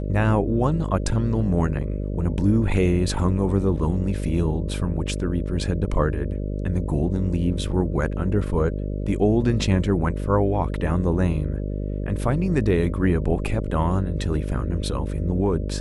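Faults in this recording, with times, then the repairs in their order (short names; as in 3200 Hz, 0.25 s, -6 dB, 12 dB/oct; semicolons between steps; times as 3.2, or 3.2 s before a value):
buzz 50 Hz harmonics 12 -27 dBFS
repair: de-hum 50 Hz, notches 12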